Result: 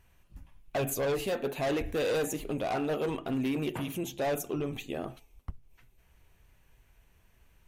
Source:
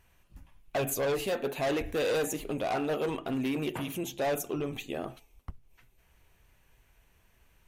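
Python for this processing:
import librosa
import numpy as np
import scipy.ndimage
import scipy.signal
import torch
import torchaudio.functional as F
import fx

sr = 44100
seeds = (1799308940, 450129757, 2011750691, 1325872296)

y = fx.low_shelf(x, sr, hz=280.0, db=4.0)
y = F.gain(torch.from_numpy(y), -1.5).numpy()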